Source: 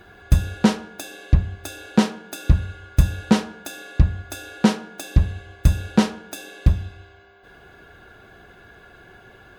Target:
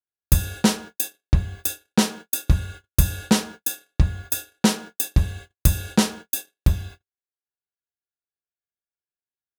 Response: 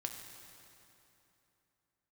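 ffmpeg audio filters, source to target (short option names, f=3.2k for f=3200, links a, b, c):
-af "agate=range=-58dB:threshold=-35dB:ratio=16:detection=peak,aemphasis=mode=production:type=75fm,volume=-1.5dB"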